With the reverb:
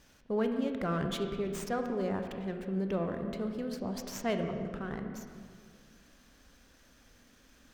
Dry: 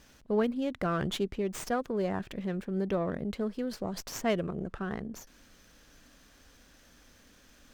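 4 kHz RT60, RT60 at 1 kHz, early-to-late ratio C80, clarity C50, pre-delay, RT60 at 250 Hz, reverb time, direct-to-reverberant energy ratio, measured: 1.5 s, 1.9 s, 7.0 dB, 6.0 dB, 20 ms, 2.3 s, 2.0 s, 5.0 dB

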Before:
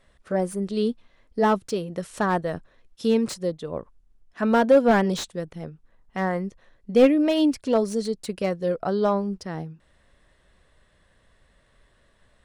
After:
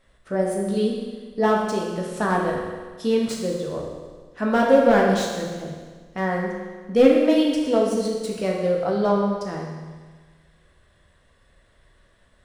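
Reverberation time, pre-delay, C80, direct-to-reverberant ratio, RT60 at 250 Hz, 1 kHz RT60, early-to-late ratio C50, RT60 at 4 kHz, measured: 1.5 s, 12 ms, 3.5 dB, -1.5 dB, 1.5 s, 1.5 s, 2.0 dB, 1.5 s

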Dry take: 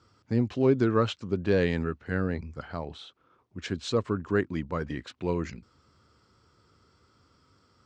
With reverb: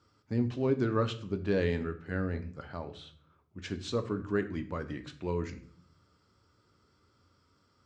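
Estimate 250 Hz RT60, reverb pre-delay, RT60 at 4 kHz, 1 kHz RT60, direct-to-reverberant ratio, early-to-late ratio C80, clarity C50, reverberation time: 0.90 s, 3 ms, 0.40 s, 0.50 s, 7.5 dB, 17.5 dB, 14.0 dB, 0.55 s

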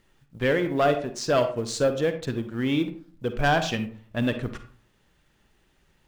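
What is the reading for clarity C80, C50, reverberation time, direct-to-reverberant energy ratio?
14.0 dB, 10.0 dB, 0.45 s, 8.5 dB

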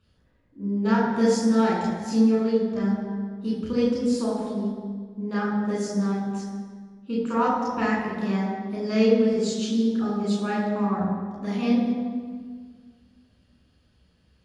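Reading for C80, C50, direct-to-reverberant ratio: 3.0 dB, 1.0 dB, -4.5 dB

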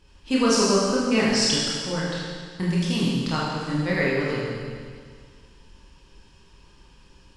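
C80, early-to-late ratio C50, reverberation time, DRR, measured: 1.0 dB, -1.0 dB, 1.9 s, -7.0 dB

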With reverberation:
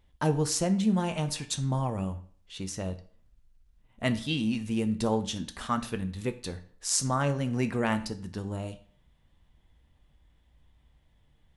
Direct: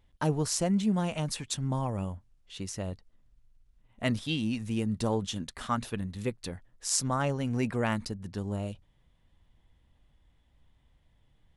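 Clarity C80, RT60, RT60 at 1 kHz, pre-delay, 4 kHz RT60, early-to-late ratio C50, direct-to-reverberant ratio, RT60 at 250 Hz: 18.5 dB, 0.50 s, 0.50 s, 7 ms, 0.45 s, 15.0 dB, 8.5 dB, 0.50 s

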